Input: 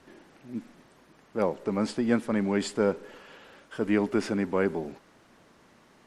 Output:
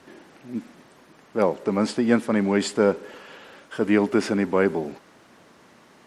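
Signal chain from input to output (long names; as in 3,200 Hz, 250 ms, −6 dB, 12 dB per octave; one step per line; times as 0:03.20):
high-pass filter 120 Hz 6 dB per octave
level +6 dB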